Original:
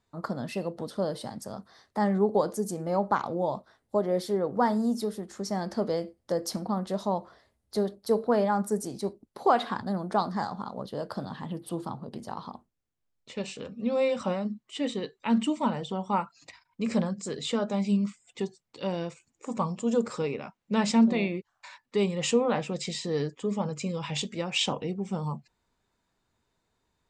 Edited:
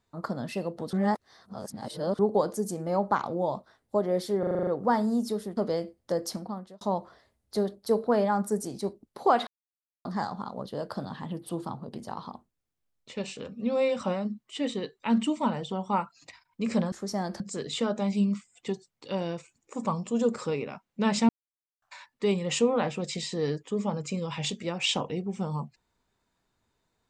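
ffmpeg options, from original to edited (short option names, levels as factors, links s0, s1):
-filter_complex "[0:a]asplit=18[s0][s1][s2][s3][s4][s5][s6][s7][s8][s9][s10][s11][s12][s13][s14][s15][s16][s17];[s0]atrim=end=0.932[s18];[s1]atrim=start=0.928:end=2.192,asetpts=PTS-STARTPTS,areverse[s19];[s2]atrim=start=2.188:end=4.432[s20];[s3]atrim=start=4.388:end=4.432[s21];[s4]atrim=start=4.388:end=4.432[s22];[s5]atrim=start=4.388:end=4.432[s23];[s6]atrim=start=4.388:end=4.432[s24];[s7]atrim=start=4.388:end=4.432[s25];[s8]atrim=start=4.388:end=4.432[s26];[s9]atrim=start=4.388:end=5.292[s27];[s10]atrim=start=5.768:end=7.01,asetpts=PTS-STARTPTS,afade=t=out:st=0.632:d=0.61[s28];[s11]atrim=start=7.01:end=9.67,asetpts=PTS-STARTPTS,afade=t=in:d=0.004:c=hsin,afade=t=out:st=2.656:d=0.004:c=hsin[s29];[s12]atrim=start=9.67:end=10.25,asetpts=PTS-STARTPTS,volume=0[s30];[s13]atrim=start=10.25:end=17.122,asetpts=PTS-STARTPTS,afade=t=in:d=0.004:c=hsin[s31];[s14]atrim=start=5.288:end=5.772[s32];[s15]atrim=start=17.118:end=21.01,asetpts=PTS-STARTPTS,afade=t=out:st=3.888:d=0.004:c=hsin[s33];[s16]atrim=start=21.01:end=21.54,asetpts=PTS-STARTPTS,volume=0[s34];[s17]atrim=start=21.54,asetpts=PTS-STARTPTS,afade=t=in:d=0.004:c=hsin[s35];[s18][s19]acrossfade=d=0.004:c1=hsin:c2=hsin[s36];[s36][s20]acrossfade=d=0.004:c1=hsin:c2=hsin[s37];[s37][s21]acrossfade=d=0.004:c1=hsin:c2=hsin[s38];[s38][s22]acrossfade=d=0.004:c1=hsin:c2=hsin[s39];[s39][s23]acrossfade=d=0.004:c1=hsin:c2=hsin[s40];[s40][s24]acrossfade=d=0.004:c1=hsin:c2=hsin[s41];[s41][s25]acrossfade=d=0.004:c1=hsin:c2=hsin[s42];[s42][s26]acrossfade=d=0.004:c1=hsin:c2=hsin[s43];[s43][s27]acrossfade=d=0.004:c1=hsin:c2=hsin[s44];[s28][s29][s30][s31]concat=n=4:v=0:a=1[s45];[s44][s45]acrossfade=d=0.004:c1=hsin:c2=hsin[s46];[s46][s32]acrossfade=d=0.004:c1=hsin:c2=hsin[s47];[s33][s34][s35]concat=n=3:v=0:a=1[s48];[s47][s48]acrossfade=d=0.004:c1=hsin:c2=hsin"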